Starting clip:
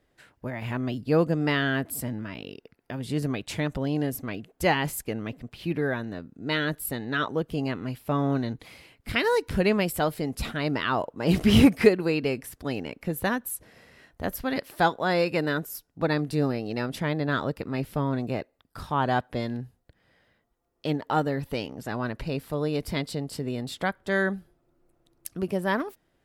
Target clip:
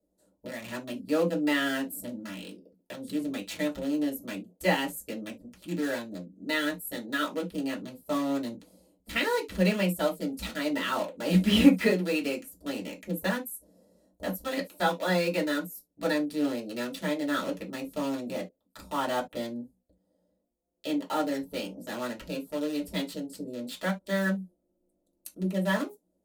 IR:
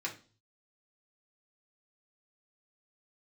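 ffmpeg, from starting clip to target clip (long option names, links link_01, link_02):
-filter_complex "[0:a]lowshelf=frequency=93:gain=10,acrossover=split=380|730|6200[link_01][link_02][link_03][link_04];[link_03]acrusher=bits=5:mix=0:aa=0.000001[link_05];[link_01][link_02][link_05][link_04]amix=inputs=4:normalize=0[link_06];[1:a]atrim=start_sample=2205,atrim=end_sample=6174,asetrate=74970,aresample=44100[link_07];[link_06][link_07]afir=irnorm=-1:irlink=0"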